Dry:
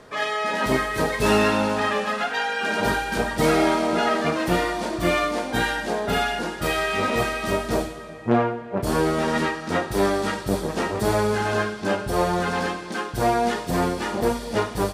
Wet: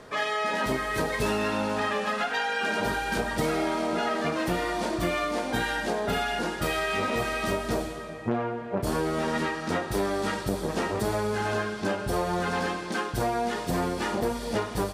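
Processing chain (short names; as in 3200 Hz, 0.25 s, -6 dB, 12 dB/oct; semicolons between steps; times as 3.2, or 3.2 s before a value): compressor, threshold -24 dBFS, peak gain reduction 10 dB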